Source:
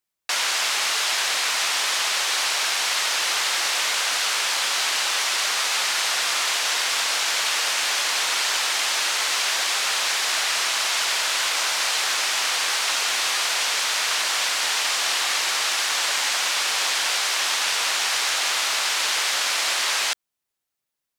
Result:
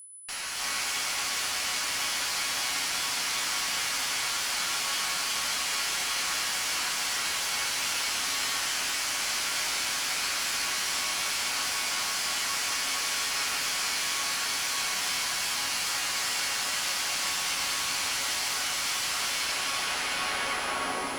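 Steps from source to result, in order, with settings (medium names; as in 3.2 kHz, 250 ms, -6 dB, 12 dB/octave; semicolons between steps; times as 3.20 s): tape stop on the ending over 2.28 s; high-pass 760 Hz 6 dB/octave; band-stop 3.7 kHz, Q 8; wow and flutter 130 cents; chord resonator F#2 sus4, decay 0.2 s; one-sided clip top -38 dBFS; whistle 10 kHz -44 dBFS; on a send: echo that smears into a reverb 463 ms, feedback 76%, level -9 dB; on the sum: gated-style reverb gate 390 ms rising, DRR -3.5 dB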